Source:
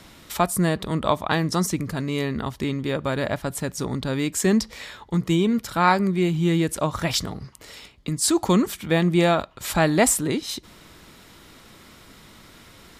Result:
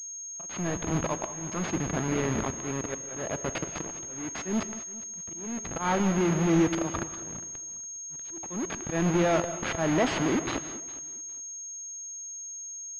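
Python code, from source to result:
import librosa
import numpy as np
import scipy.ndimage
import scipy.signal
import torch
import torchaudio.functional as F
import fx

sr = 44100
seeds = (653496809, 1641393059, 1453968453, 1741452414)

p1 = fx.delta_hold(x, sr, step_db=-23.0)
p2 = fx.highpass(p1, sr, hz=130.0, slope=6)
p3 = fx.auto_swell(p2, sr, attack_ms=166.0)
p4 = fx.leveller(p3, sr, passes=3)
p5 = 10.0 ** (-16.5 / 20.0) * (np.abs((p4 / 10.0 ** (-16.5 / 20.0) + 3.0) % 4.0 - 2.0) - 1.0)
p6 = p4 + F.gain(torch.from_numpy(p5), -10.0).numpy()
p7 = fx.comb_fb(p6, sr, f0_hz=330.0, decay_s=0.24, harmonics='all', damping=0.0, mix_pct=50)
p8 = fx.auto_swell(p7, sr, attack_ms=628.0)
p9 = p8 + fx.echo_feedback(p8, sr, ms=408, feedback_pct=22, wet_db=-19.5, dry=0)
p10 = fx.rev_gated(p9, sr, seeds[0], gate_ms=220, shape='rising', drr_db=11.5)
p11 = fx.pwm(p10, sr, carrier_hz=6500.0)
y = F.gain(torch.from_numpy(p11), -6.0).numpy()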